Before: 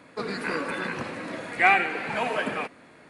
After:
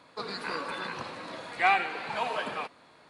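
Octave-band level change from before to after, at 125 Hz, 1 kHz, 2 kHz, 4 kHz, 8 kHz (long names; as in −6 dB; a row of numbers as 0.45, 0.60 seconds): −8.5 dB, −2.5 dB, −6.5 dB, −0.5 dB, can't be measured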